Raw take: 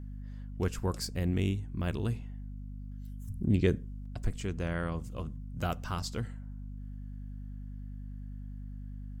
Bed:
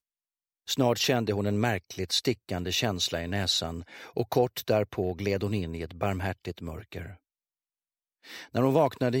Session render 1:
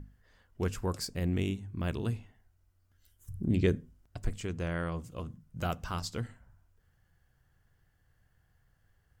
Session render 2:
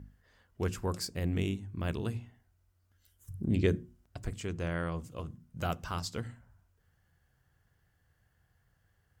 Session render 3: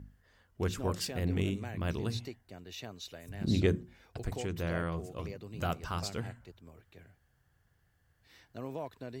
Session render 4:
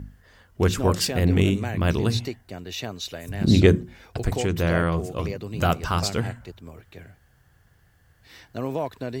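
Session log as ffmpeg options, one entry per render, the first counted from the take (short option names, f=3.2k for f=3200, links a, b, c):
-af "bandreject=f=50:t=h:w=6,bandreject=f=100:t=h:w=6,bandreject=f=150:t=h:w=6,bandreject=f=200:t=h:w=6,bandreject=f=250:t=h:w=6"
-af "highpass=42,bandreject=f=60:t=h:w=6,bandreject=f=120:t=h:w=6,bandreject=f=180:t=h:w=6,bandreject=f=240:t=h:w=6,bandreject=f=300:t=h:w=6,bandreject=f=360:t=h:w=6"
-filter_complex "[1:a]volume=-17dB[a];[0:a][a]amix=inputs=2:normalize=0"
-af "volume=12dB"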